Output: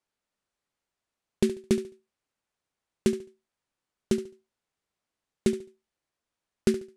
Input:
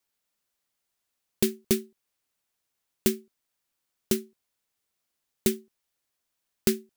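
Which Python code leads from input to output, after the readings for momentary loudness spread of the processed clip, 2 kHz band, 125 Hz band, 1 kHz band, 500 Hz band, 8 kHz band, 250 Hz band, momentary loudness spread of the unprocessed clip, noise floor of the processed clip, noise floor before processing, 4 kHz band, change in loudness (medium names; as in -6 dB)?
9 LU, -2.5 dB, +1.5 dB, +0.5 dB, +1.5 dB, -8.5 dB, +1.5 dB, 2 LU, under -85 dBFS, -82 dBFS, -5.0 dB, -0.5 dB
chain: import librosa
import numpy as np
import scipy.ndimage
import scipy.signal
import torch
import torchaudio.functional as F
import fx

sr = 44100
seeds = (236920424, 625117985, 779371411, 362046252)

y = scipy.signal.sosfilt(scipy.signal.butter(4, 10000.0, 'lowpass', fs=sr, output='sos'), x)
y = fx.high_shelf(y, sr, hz=2600.0, db=-10.0)
y = fx.echo_feedback(y, sr, ms=71, feedback_pct=26, wet_db=-14.0)
y = F.gain(torch.from_numpy(y), 1.5).numpy()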